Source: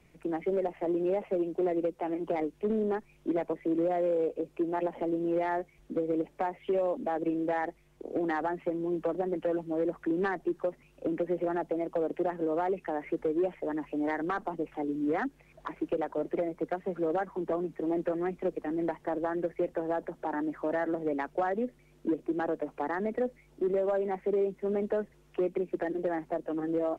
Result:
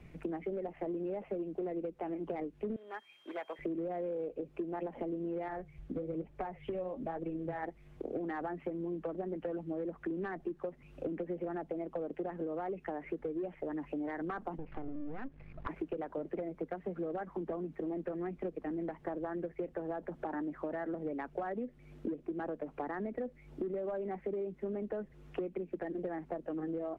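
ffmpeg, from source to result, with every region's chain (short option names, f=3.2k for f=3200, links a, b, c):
-filter_complex "[0:a]asettb=1/sr,asplit=3[a][b][c];[a]atrim=end=2.764[d];[b]atrim=start=2.76:end=3.59,asetpts=PTS-STARTPTS,afade=t=in:d=0.004:c=qsin,afade=t=out:st=0.826:d=0.004:c=qsin,highpass=1.1k,volume=32.5dB,asoftclip=hard,volume=-32.5dB,aeval=exprs='val(0)+0.000631*sin(2*PI*3200*n/s)':c=same[e];[c]atrim=start=3.586[f];[d][e]acrossfade=d=0.004:c1=hsin:c2=qsin[g];[g][f]acrossfade=d=0.004:c1=qsin:c2=hsin,asettb=1/sr,asplit=3[h][i][j];[h]atrim=end=5.484[k];[i]atrim=start=5.48:end=7.63,asetpts=PTS-STARTPTS,afade=t=in:d=0.004:c=qsin,afade=t=out:st=2.146:d=0.004:c=qsin,lowshelf=f=170:t=q:w=1.5:g=7.5,flanger=delay=1.9:depth=9.6:regen=63:speed=1.1:shape=triangular[l];[j]atrim=start=7.626[m];[k][l]acrossfade=d=0.004:c1=hsin:c2=qsin[n];[n][m]acrossfade=d=0.004:c1=qsin:c2=hsin,asettb=1/sr,asplit=3[o][p][q];[o]atrim=end=14.584[r];[p]atrim=start=14.58:end=15.67,asetpts=PTS-STARTPTS,afade=t=in:d=0.004:c=qsin,afade=t=out:st=1.086:d=0.004:c=qsin,aeval=exprs='if(lt(val(0),0),0.251*val(0),val(0))':c=same,bass=f=250:g=5,treble=f=4k:g=-11,acompressor=threshold=-36dB:ratio=6:attack=3.2:release=140:knee=1:detection=peak[s];[q]atrim=start=15.666[t];[r][s]acrossfade=d=0.004:c1=hsin:c2=qsin[u];[u][t]acrossfade=d=0.004:c1=qsin:c2=hsin,bass=f=250:g=6,treble=f=4k:g=-10,bandreject=f=950:w=20,acompressor=threshold=-40dB:ratio=6,volume=4dB"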